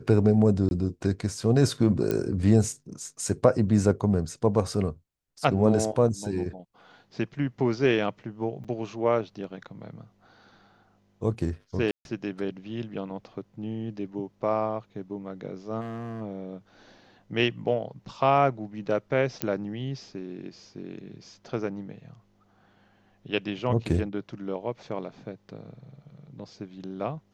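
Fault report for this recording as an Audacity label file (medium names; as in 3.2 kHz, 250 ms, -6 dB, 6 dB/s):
0.690000	0.710000	dropout 21 ms
2.110000	2.110000	pop -14 dBFS
8.640000	8.650000	dropout 6 ms
11.910000	12.050000	dropout 141 ms
15.800000	16.220000	clipped -32 dBFS
19.420000	19.420000	pop -9 dBFS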